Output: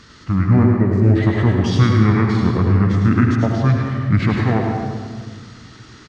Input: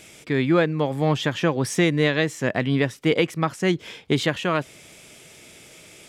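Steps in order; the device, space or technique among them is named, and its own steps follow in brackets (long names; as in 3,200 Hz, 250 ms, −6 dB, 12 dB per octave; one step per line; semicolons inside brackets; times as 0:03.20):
monster voice (pitch shifter −6 semitones; formants moved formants −3.5 semitones; low-shelf EQ 240 Hz +7.5 dB; single-tap delay 105 ms −7.5 dB; convolution reverb RT60 1.7 s, pre-delay 71 ms, DRR 1.5 dB)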